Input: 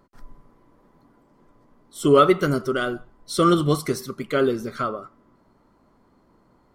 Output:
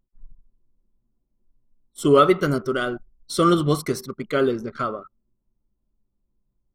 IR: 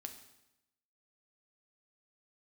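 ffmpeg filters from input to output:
-af "anlmdn=1.58"

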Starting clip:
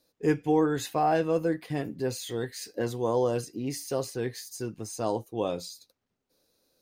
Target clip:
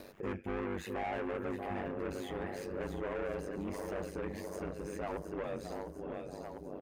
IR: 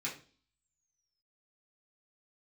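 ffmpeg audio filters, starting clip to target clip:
-filter_complex "[0:a]asplit=2[link_01][link_02];[link_02]adelay=633,lowpass=frequency=960:poles=1,volume=-12dB,asplit=2[link_03][link_04];[link_04]adelay=633,lowpass=frequency=960:poles=1,volume=0.48,asplit=2[link_05][link_06];[link_06]adelay=633,lowpass=frequency=960:poles=1,volume=0.48,asplit=2[link_07][link_08];[link_08]adelay=633,lowpass=frequency=960:poles=1,volume=0.48,asplit=2[link_09][link_10];[link_10]adelay=633,lowpass=frequency=960:poles=1,volume=0.48[link_11];[link_03][link_05][link_07][link_09][link_11]amix=inputs=5:normalize=0[link_12];[link_01][link_12]amix=inputs=2:normalize=0,asoftclip=type=hard:threshold=-21.5dB,asplit=2[link_13][link_14];[link_14]aecho=0:1:704|1408|2112|2816:0.316|0.133|0.0558|0.0234[link_15];[link_13][link_15]amix=inputs=2:normalize=0,asoftclip=type=tanh:threshold=-31.5dB,highshelf=frequency=3200:width_type=q:width=1.5:gain=-10.5,acompressor=mode=upward:threshold=-38dB:ratio=2.5,aeval=exprs='val(0)*sin(2*PI*48*n/s)':channel_layout=same,acompressor=threshold=-52dB:ratio=1.5,volume=5.5dB"

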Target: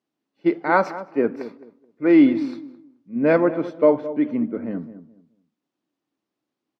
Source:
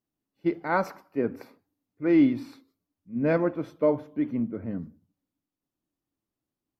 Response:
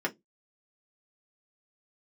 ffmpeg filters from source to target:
-filter_complex "[0:a]highpass=230,lowpass=4900,asplit=2[link_01][link_02];[link_02]adelay=214,lowpass=frequency=1000:poles=1,volume=-13dB,asplit=2[link_03][link_04];[link_04]adelay=214,lowpass=frequency=1000:poles=1,volume=0.25,asplit=2[link_05][link_06];[link_06]adelay=214,lowpass=frequency=1000:poles=1,volume=0.25[link_07];[link_01][link_03][link_05][link_07]amix=inputs=4:normalize=0,volume=7.5dB"

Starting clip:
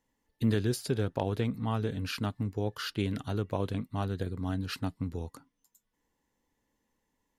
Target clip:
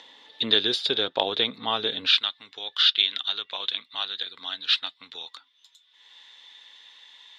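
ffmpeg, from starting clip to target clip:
ffmpeg -i in.wav -af "asetnsamples=nb_out_samples=441:pad=0,asendcmd='2.12 highpass f 1500',highpass=500,acompressor=mode=upward:threshold=-48dB:ratio=2.5,lowpass=frequency=3600:width_type=q:width=12,volume=8dB" out.wav

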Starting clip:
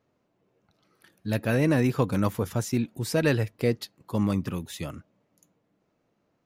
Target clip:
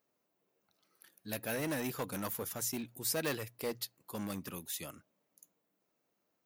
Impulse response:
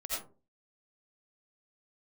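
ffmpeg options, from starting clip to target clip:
-af "asoftclip=type=hard:threshold=-19.5dB,aemphasis=mode=production:type=bsi,bandreject=frequency=60:width_type=h:width=6,bandreject=frequency=120:width_type=h:width=6,volume=-8.5dB"

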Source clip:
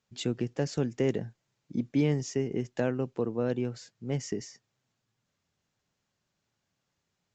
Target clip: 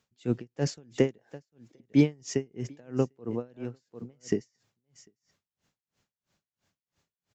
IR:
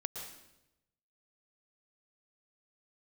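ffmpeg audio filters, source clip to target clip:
-filter_complex "[0:a]asettb=1/sr,asplit=3[link_01][link_02][link_03];[link_01]atrim=end=1.184[link_04];[link_02]atrim=start=1.18:end=1.8,asetpts=PTS-STARTPTS,afade=type=in:duration=0.004:curve=qsin,afade=type=out:start_time=0.616:duration=0.004:curve=qsin,highpass=frequency=480:width=0.5412,highpass=frequency=480:width=1.3066[link_05];[link_03]atrim=start=1.796[link_06];[link_04][link_05]acrossfade=duration=0.004:curve1=hsin:curve2=qsin[link_07];[link_07][link_06]acrossfade=duration=0.004:curve1=qsin:curve2=hsin,asettb=1/sr,asplit=3[link_08][link_09][link_10];[link_08]atrim=end=3.564[link_11];[link_09]atrim=start=3.56:end=4.21,asetpts=PTS-STARTPTS,afade=type=in:duration=0.004:curve=qsin,afade=type=out:start_time=0.646:duration=0.004:curve=qsin,acompressor=threshold=-38dB:ratio=3[link_12];[link_10]atrim=start=4.206[link_13];[link_11][link_12]acrossfade=duration=0.004:curve1=hsin:curve2=qsin[link_14];[link_14][link_13]acrossfade=duration=0.004:curve1=qsin:curve2=hsin,asplit=2[link_15][link_16];[link_16]aecho=0:1:748:0.112[link_17];[link_15][link_17]amix=inputs=2:normalize=0,aeval=exprs='val(0)*pow(10,-34*(0.5-0.5*cos(2*PI*3*n/s))/20)':channel_layout=same,volume=7dB"

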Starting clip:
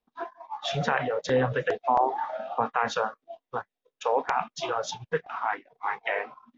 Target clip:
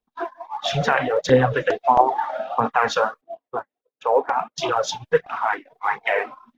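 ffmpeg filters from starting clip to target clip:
ffmpeg -i in.wav -filter_complex "[0:a]agate=range=-10dB:threshold=-58dB:ratio=16:detection=peak,asettb=1/sr,asplit=3[link_01][link_02][link_03];[link_01]atrim=end=3.214[link_04];[link_02]atrim=start=3.21:end=4.58,asetpts=PTS-STARTPTS,afade=type=in:duration=0.004:curve=qsin,afade=type=out:start_time=1.366:duration=0.004:curve=qsin,bandpass=frequency=440:width_type=q:width=0.54:csg=0[link_05];[link_03]atrim=start=4.576[link_06];[link_04][link_05]acrossfade=duration=0.004:curve1=hsin:curve2=qsin[link_07];[link_07][link_06]acrossfade=duration=0.004:curve1=qsin:curve2=hsin,aphaser=in_gain=1:out_gain=1:delay=3.9:decay=0.46:speed=1.5:type=triangular,volume=6dB" out.wav

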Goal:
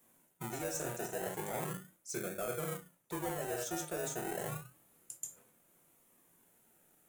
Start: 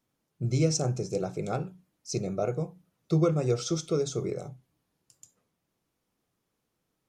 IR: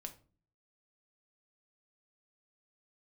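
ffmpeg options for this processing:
-filter_complex "[1:a]atrim=start_sample=2205,atrim=end_sample=6615[link_01];[0:a][link_01]afir=irnorm=-1:irlink=0,acrossover=split=260[link_02][link_03];[link_02]acompressor=threshold=-40dB:ratio=6[link_04];[link_04][link_03]amix=inputs=2:normalize=0,acrossover=split=1300[link_05][link_06];[link_05]acrusher=samples=32:mix=1:aa=0.000001:lfo=1:lforange=19.2:lforate=0.32[link_07];[link_07][link_06]amix=inputs=2:normalize=0,asplit=2[link_08][link_09];[link_09]highpass=frequency=720:poles=1,volume=17dB,asoftclip=type=tanh:threshold=-17.5dB[link_10];[link_08][link_10]amix=inputs=2:normalize=0,lowpass=frequency=1200:poles=1,volume=-6dB,aexciter=amount=14.3:drive=3.1:freq=7300,areverse,acompressor=threshold=-44dB:ratio=6,areverse,volume=7dB"

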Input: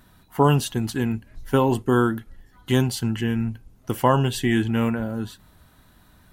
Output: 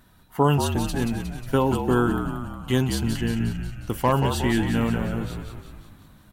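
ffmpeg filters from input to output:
ffmpeg -i in.wav -filter_complex "[0:a]asplit=3[link_01][link_02][link_03];[link_01]afade=type=out:start_time=2.77:duration=0.02[link_04];[link_02]volume=11dB,asoftclip=hard,volume=-11dB,afade=type=in:start_time=2.77:duration=0.02,afade=type=out:start_time=4.11:duration=0.02[link_05];[link_03]afade=type=in:start_time=4.11:duration=0.02[link_06];[link_04][link_05][link_06]amix=inputs=3:normalize=0,asplit=9[link_07][link_08][link_09][link_10][link_11][link_12][link_13][link_14][link_15];[link_08]adelay=180,afreqshift=-54,volume=-6.5dB[link_16];[link_09]adelay=360,afreqshift=-108,volume=-11.1dB[link_17];[link_10]adelay=540,afreqshift=-162,volume=-15.7dB[link_18];[link_11]adelay=720,afreqshift=-216,volume=-20.2dB[link_19];[link_12]adelay=900,afreqshift=-270,volume=-24.8dB[link_20];[link_13]adelay=1080,afreqshift=-324,volume=-29.4dB[link_21];[link_14]adelay=1260,afreqshift=-378,volume=-34dB[link_22];[link_15]adelay=1440,afreqshift=-432,volume=-38.6dB[link_23];[link_07][link_16][link_17][link_18][link_19][link_20][link_21][link_22][link_23]amix=inputs=9:normalize=0,volume=-2dB" out.wav

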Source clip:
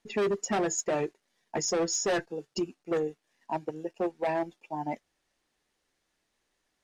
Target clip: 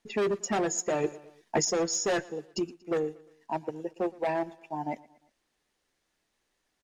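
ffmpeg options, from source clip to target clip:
ffmpeg -i in.wav -filter_complex "[0:a]aecho=1:1:117|234|351:0.0794|0.0381|0.0183,asettb=1/sr,asplit=3[link_01][link_02][link_03];[link_01]atrim=end=1.044[link_04];[link_02]atrim=start=1.04:end=1.65,asetpts=PTS-STARTPTS,afade=type=in:duration=0.004:curve=qsin,afade=type=out:start_time=0.606:duration=0.004:curve=qsin,acontrast=32[link_05];[link_03]atrim=start=1.646[link_06];[link_04][link_05]acrossfade=duration=0.004:curve1=hsin:curve2=qsin[link_07];[link_07][link_06]acrossfade=duration=0.004:curve1=qsin:curve2=hsin" out.wav

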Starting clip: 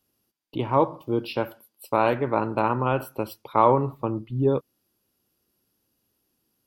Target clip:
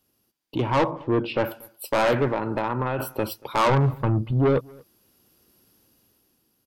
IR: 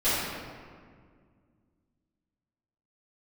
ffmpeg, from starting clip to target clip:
-filter_complex "[0:a]asplit=3[link_01][link_02][link_03];[link_01]afade=type=out:start_time=0.9:duration=0.02[link_04];[link_02]lowpass=2200,afade=type=in:start_time=0.9:duration=0.02,afade=type=out:start_time=1.43:duration=0.02[link_05];[link_03]afade=type=in:start_time=1.43:duration=0.02[link_06];[link_04][link_05][link_06]amix=inputs=3:normalize=0,asplit=3[link_07][link_08][link_09];[link_07]afade=type=out:start_time=2.27:duration=0.02[link_10];[link_08]acompressor=threshold=-26dB:ratio=10,afade=type=in:start_time=2.27:duration=0.02,afade=type=out:start_time=2.98:duration=0.02[link_11];[link_09]afade=type=in:start_time=2.98:duration=0.02[link_12];[link_10][link_11][link_12]amix=inputs=3:normalize=0,asplit=3[link_13][link_14][link_15];[link_13]afade=type=out:start_time=3.68:duration=0.02[link_16];[link_14]asubboost=boost=3:cutoff=180,afade=type=in:start_time=3.68:duration=0.02,afade=type=out:start_time=4.31:duration=0.02[link_17];[link_15]afade=type=in:start_time=4.31:duration=0.02[link_18];[link_16][link_17][link_18]amix=inputs=3:normalize=0,dynaudnorm=framelen=240:gausssize=7:maxgain=9dB,asoftclip=type=tanh:threshold=-19.5dB,asplit=2[link_19][link_20];[link_20]adelay=233.2,volume=-26dB,highshelf=frequency=4000:gain=-5.25[link_21];[link_19][link_21]amix=inputs=2:normalize=0,volume=3.5dB"

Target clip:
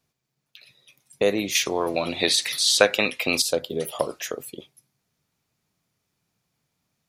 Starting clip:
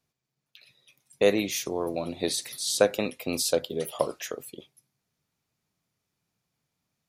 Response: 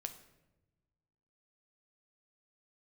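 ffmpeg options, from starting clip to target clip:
-filter_complex "[0:a]asettb=1/sr,asplit=3[link_01][link_02][link_03];[link_01]atrim=end=1.554[link_04];[link_02]atrim=start=1.55:end=3.42,asetpts=PTS-STARTPTS,afade=type=in:duration=0.004:curve=qsin,afade=type=out:start_time=1.866:duration=0.004:curve=qsin,equalizer=frequency=2400:width_type=o:width=2.9:gain=14[link_05];[link_03]atrim=start=3.416[link_06];[link_04][link_05]acrossfade=duration=0.004:curve1=hsin:curve2=qsin[link_07];[link_07][link_06]acrossfade=duration=0.004:curve1=qsin:curve2=hsin,asplit=2[link_08][link_09];[link_09]acompressor=threshold=-28dB:ratio=6,volume=3dB[link_10];[link_08][link_10]amix=inputs=2:normalize=0,volume=-3dB"

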